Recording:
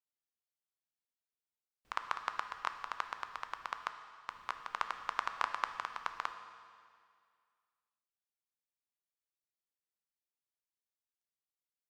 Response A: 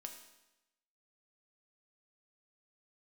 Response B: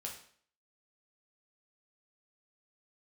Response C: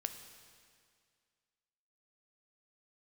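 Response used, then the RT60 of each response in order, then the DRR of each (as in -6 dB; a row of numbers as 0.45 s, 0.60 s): C; 0.95 s, 0.55 s, 2.1 s; 3.5 dB, -1.0 dB, 7.5 dB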